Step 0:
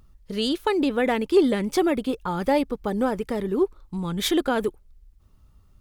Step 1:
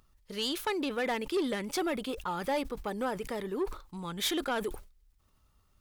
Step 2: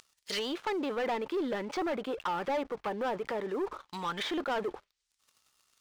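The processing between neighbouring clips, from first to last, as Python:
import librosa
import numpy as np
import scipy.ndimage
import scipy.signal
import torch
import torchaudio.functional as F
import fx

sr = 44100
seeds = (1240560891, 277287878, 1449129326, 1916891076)

y1 = fx.low_shelf(x, sr, hz=440.0, db=-12.0)
y1 = 10.0 ** (-22.0 / 20.0) * np.tanh(y1 / 10.0 ** (-22.0 / 20.0))
y1 = fx.sustainer(y1, sr, db_per_s=120.0)
y1 = y1 * 10.0 ** (-2.0 / 20.0)
y2 = fx.env_lowpass_down(y1, sr, base_hz=780.0, full_db=-32.5)
y2 = fx.weighting(y2, sr, curve='ITU-R 468')
y2 = fx.leveller(y2, sr, passes=3)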